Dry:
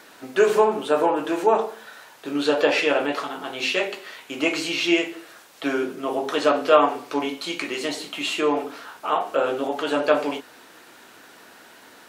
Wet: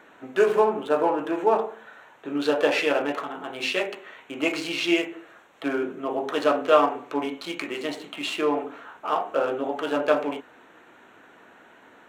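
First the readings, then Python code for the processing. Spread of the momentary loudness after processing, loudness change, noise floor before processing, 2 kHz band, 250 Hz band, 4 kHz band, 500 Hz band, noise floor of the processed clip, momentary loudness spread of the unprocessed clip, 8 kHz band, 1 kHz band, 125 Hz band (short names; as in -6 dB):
14 LU, -2.5 dB, -49 dBFS, -3.0 dB, -2.0 dB, -4.0 dB, -2.0 dB, -53 dBFS, 13 LU, -6.5 dB, -2.5 dB, -2.0 dB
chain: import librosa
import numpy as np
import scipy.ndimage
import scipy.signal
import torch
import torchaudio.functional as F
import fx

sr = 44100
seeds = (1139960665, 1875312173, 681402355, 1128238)

y = fx.wiener(x, sr, points=9)
y = F.gain(torch.from_numpy(y), -2.0).numpy()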